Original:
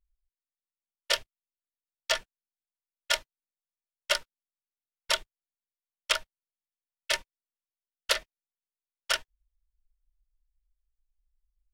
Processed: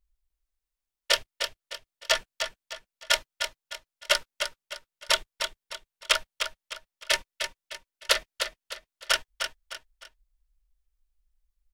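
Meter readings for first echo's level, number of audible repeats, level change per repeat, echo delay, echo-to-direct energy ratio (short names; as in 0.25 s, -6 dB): -7.0 dB, 3, -9.0 dB, 0.305 s, -6.5 dB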